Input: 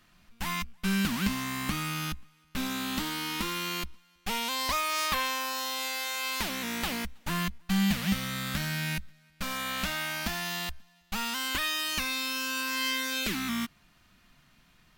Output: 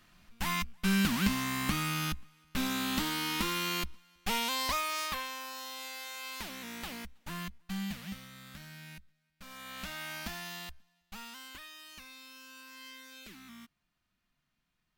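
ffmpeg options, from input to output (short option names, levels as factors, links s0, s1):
-af "volume=3.16,afade=t=out:st=4.35:d=0.92:silence=0.334965,afade=t=out:st=7.62:d=0.68:silence=0.421697,afade=t=in:st=9.42:d=0.73:silence=0.316228,afade=t=out:st=10.15:d=1.53:silence=0.237137"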